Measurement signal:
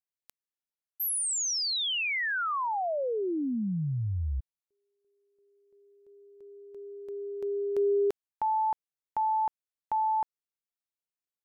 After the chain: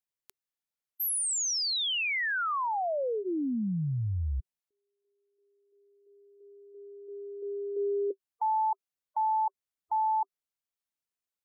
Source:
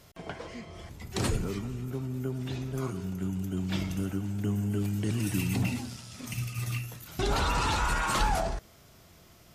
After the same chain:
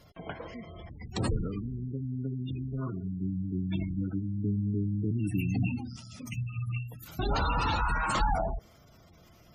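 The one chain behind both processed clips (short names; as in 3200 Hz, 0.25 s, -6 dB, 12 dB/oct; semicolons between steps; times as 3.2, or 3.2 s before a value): notch 390 Hz, Q 12; spectral gate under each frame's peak -20 dB strong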